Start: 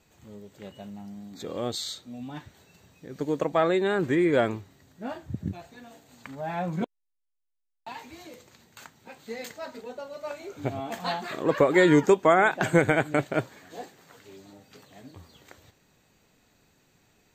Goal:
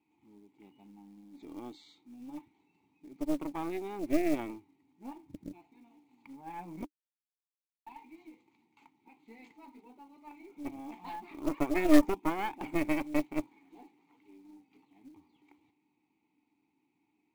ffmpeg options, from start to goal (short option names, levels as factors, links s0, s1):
-filter_complex "[0:a]asplit=3[s0][s1][s2];[s0]bandpass=f=300:t=q:w=8,volume=1[s3];[s1]bandpass=f=870:t=q:w=8,volume=0.501[s4];[s2]bandpass=f=2240:t=q:w=8,volume=0.355[s5];[s3][s4][s5]amix=inputs=3:normalize=0,acrusher=bits=6:mode=log:mix=0:aa=0.000001,aeval=exprs='0.188*(cos(1*acos(clip(val(0)/0.188,-1,1)))-cos(1*PI/2))+0.0841*(cos(2*acos(clip(val(0)/0.188,-1,1)))-cos(2*PI/2))+0.0266*(cos(6*acos(clip(val(0)/0.188,-1,1)))-cos(6*PI/2))':c=same"